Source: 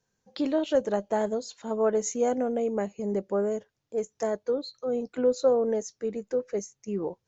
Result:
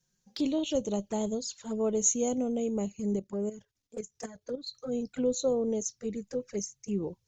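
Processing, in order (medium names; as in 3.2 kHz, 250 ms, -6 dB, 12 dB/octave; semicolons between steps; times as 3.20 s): FFT filter 120 Hz 0 dB, 670 Hz -13 dB, 6.1 kHz +2 dB; 3.16–4.67 s: level held to a coarse grid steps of 12 dB; touch-sensitive flanger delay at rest 5.6 ms, full sweep at -33.5 dBFS; trim +6 dB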